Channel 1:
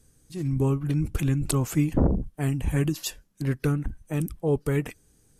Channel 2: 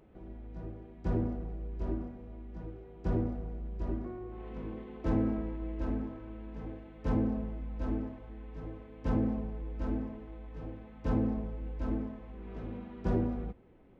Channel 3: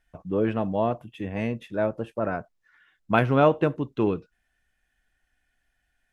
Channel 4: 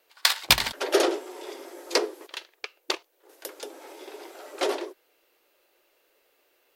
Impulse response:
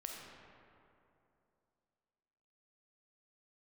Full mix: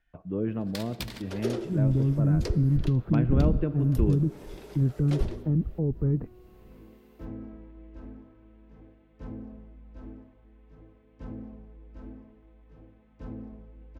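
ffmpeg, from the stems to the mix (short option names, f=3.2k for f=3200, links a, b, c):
-filter_complex "[0:a]lowpass=f=1.3k:w=0.5412,lowpass=f=1.3k:w=1.3066,lowshelf=f=400:g=9,alimiter=limit=-13.5dB:level=0:latency=1,adelay=1350,volume=-2.5dB[a];[1:a]adelay=2150,volume=-10dB[b];[2:a]lowpass=3.5k,volume=-3.5dB,asplit=2[c][d];[d]volume=-10dB[e];[3:a]asoftclip=type=hard:threshold=-7.5dB,adelay=500,volume=-4.5dB,asplit=2[f][g];[g]volume=-11.5dB[h];[4:a]atrim=start_sample=2205[i];[e][h]amix=inputs=2:normalize=0[j];[j][i]afir=irnorm=-1:irlink=0[k];[a][b][c][f][k]amix=inputs=5:normalize=0,equalizer=f=810:w=1.5:g=-2.5,acrossover=split=390[l][m];[m]acompressor=threshold=-49dB:ratio=2[n];[l][n]amix=inputs=2:normalize=0"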